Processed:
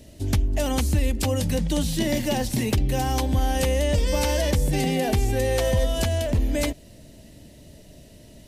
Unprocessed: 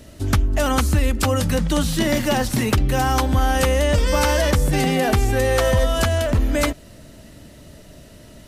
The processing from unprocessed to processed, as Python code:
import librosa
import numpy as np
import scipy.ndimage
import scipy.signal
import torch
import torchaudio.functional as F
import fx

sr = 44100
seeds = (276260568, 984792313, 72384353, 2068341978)

y = fx.peak_eq(x, sr, hz=1300.0, db=-13.0, octaves=0.69)
y = F.gain(torch.from_numpy(y), -3.5).numpy()